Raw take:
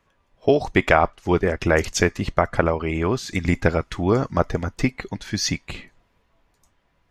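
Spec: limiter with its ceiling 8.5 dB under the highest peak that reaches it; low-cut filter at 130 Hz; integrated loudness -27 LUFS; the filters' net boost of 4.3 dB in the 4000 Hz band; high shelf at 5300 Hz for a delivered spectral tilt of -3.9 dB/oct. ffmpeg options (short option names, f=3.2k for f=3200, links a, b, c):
-af "highpass=130,equalizer=f=4k:t=o:g=3,highshelf=f=5.3k:g=5,volume=-3dB,alimiter=limit=-10.5dB:level=0:latency=1"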